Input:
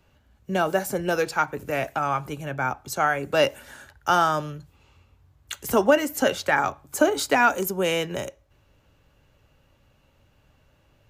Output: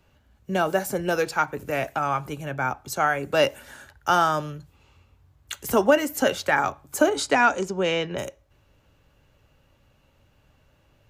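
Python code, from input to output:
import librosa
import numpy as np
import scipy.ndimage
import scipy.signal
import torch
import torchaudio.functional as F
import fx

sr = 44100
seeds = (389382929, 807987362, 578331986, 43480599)

y = fx.lowpass(x, sr, hz=fx.line((7.09, 11000.0), (8.17, 4600.0)), slope=24, at=(7.09, 8.17), fade=0.02)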